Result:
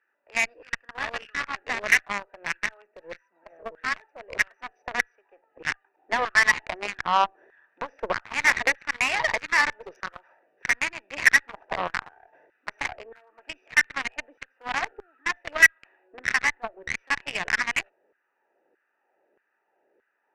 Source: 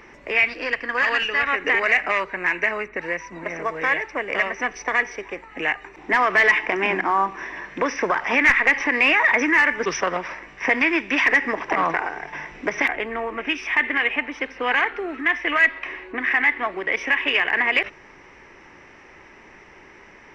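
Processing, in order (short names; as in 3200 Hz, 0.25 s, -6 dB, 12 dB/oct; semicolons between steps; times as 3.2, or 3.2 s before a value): Wiener smoothing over 41 samples; LFO high-pass saw down 1.6 Hz 470–1600 Hz; added harmonics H 3 -17 dB, 6 -25 dB, 7 -26 dB, 8 -24 dB, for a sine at -1.5 dBFS; gain -1 dB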